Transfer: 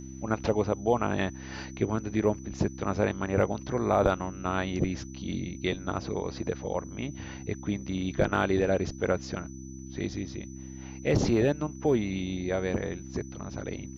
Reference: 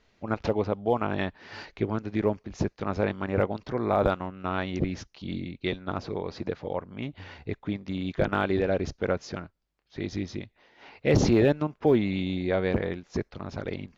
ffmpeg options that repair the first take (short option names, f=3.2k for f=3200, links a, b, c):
-af "bandreject=f=65.7:t=h:w=4,bandreject=f=131.4:t=h:w=4,bandreject=f=197.1:t=h:w=4,bandreject=f=262.8:t=h:w=4,bandreject=f=328.5:t=h:w=4,bandreject=f=6k:w=30,asetnsamples=n=441:p=0,asendcmd='10.13 volume volume 3.5dB',volume=0dB"